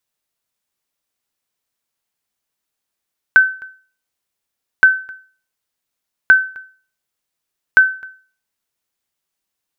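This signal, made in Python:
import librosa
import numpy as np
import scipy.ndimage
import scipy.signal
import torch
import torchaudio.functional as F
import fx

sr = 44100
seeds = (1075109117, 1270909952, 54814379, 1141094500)

y = fx.sonar_ping(sr, hz=1530.0, decay_s=0.4, every_s=1.47, pings=4, echo_s=0.26, echo_db=-25.5, level_db=-1.0)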